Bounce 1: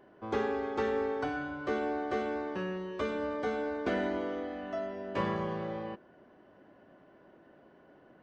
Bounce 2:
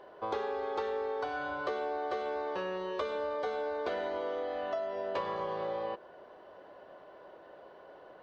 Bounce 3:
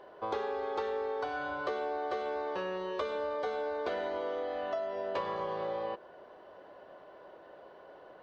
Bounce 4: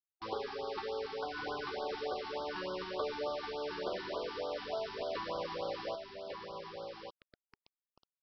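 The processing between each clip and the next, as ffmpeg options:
ffmpeg -i in.wav -af "equalizer=frequency=125:width_type=o:width=1:gain=-4,equalizer=frequency=250:width_type=o:width=1:gain=-9,equalizer=frequency=500:width_type=o:width=1:gain=10,equalizer=frequency=1000:width_type=o:width=1:gain=8,equalizer=frequency=4000:width_type=o:width=1:gain=11,acompressor=threshold=-32dB:ratio=6" out.wav
ffmpeg -i in.wav -af anull out.wav
ffmpeg -i in.wav -af "aresample=11025,acrusher=bits=6:mix=0:aa=0.000001,aresample=44100,aecho=1:1:1147:0.562,afftfilt=real='re*(1-between(b*sr/1024,530*pow(2200/530,0.5+0.5*sin(2*PI*3.4*pts/sr))/1.41,530*pow(2200/530,0.5+0.5*sin(2*PI*3.4*pts/sr))*1.41))':imag='im*(1-between(b*sr/1024,530*pow(2200/530,0.5+0.5*sin(2*PI*3.4*pts/sr))/1.41,530*pow(2200/530,0.5+0.5*sin(2*PI*3.4*pts/sr))*1.41))':win_size=1024:overlap=0.75,volume=-3.5dB" out.wav

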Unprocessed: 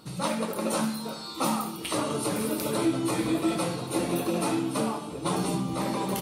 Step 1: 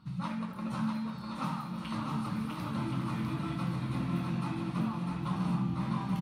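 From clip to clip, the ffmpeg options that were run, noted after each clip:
ffmpeg -i in.wav -filter_complex "[0:a]firequalizer=gain_entry='entry(180,0);entry(410,-24);entry(1000,-7);entry(8100,-26)':delay=0.05:min_phase=1,asplit=2[link_01][link_02];[link_02]aecho=0:1:650|1072|1347|1526|1642:0.631|0.398|0.251|0.158|0.1[link_03];[link_01][link_03]amix=inputs=2:normalize=0" out.wav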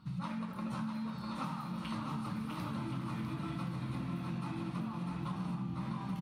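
ffmpeg -i in.wav -af "acompressor=threshold=-35dB:ratio=6" out.wav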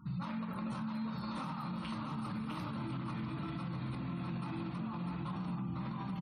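ffmpeg -i in.wav -af "afftfilt=real='re*gte(hypot(re,im),0.00112)':imag='im*gte(hypot(re,im),0.00112)':win_size=1024:overlap=0.75,alimiter=level_in=12dB:limit=-24dB:level=0:latency=1:release=53,volume=-12dB,volume=4dB" out.wav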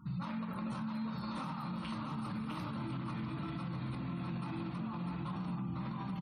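ffmpeg -i in.wav -af "bandreject=frequency=418.7:width_type=h:width=4,bandreject=frequency=837.4:width_type=h:width=4,bandreject=frequency=1256.1:width_type=h:width=4,bandreject=frequency=1674.8:width_type=h:width=4,bandreject=frequency=2093.5:width_type=h:width=4,bandreject=frequency=2512.2:width_type=h:width=4,bandreject=frequency=2930.9:width_type=h:width=4,bandreject=frequency=3349.6:width_type=h:width=4,bandreject=frequency=3768.3:width_type=h:width=4,bandreject=frequency=4187:width_type=h:width=4,bandreject=frequency=4605.7:width_type=h:width=4,bandreject=frequency=5024.4:width_type=h:width=4,bandreject=frequency=5443.1:width_type=h:width=4,bandreject=frequency=5861.8:width_type=h:width=4,bandreject=frequency=6280.5:width_type=h:width=4" out.wav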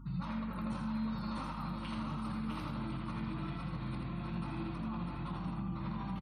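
ffmpeg -i in.wav -filter_complex "[0:a]aeval=exprs='val(0)+0.00398*(sin(2*PI*50*n/s)+sin(2*PI*2*50*n/s)/2+sin(2*PI*3*50*n/s)/3+sin(2*PI*4*50*n/s)/4+sin(2*PI*5*50*n/s)/5)':channel_layout=same,asplit=2[link_01][link_02];[link_02]aecho=0:1:82:0.562[link_03];[link_01][link_03]amix=inputs=2:normalize=0,volume=-1dB" out.wav

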